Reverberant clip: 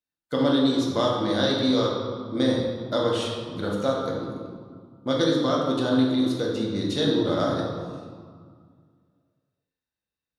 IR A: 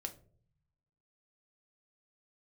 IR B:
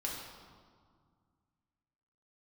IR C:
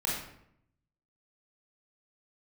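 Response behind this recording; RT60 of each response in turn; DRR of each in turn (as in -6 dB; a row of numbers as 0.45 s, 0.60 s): B; no single decay rate, 1.9 s, 0.75 s; 4.5 dB, -3.5 dB, -5.0 dB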